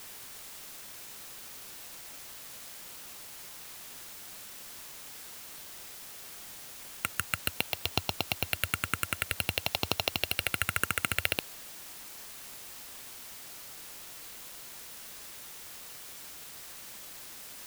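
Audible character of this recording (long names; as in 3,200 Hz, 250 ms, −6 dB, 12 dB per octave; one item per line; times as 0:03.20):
a buzz of ramps at a fixed pitch in blocks of 32 samples
phaser sweep stages 4, 0.53 Hz, lowest notch 800–1,600 Hz
a quantiser's noise floor 8 bits, dither triangular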